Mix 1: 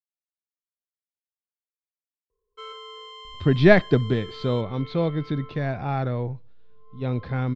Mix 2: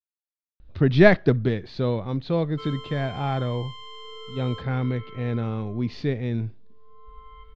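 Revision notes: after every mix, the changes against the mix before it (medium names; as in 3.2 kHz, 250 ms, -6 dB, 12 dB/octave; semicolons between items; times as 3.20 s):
speech: entry -2.65 s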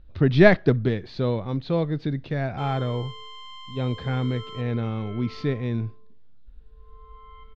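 speech: entry -0.60 s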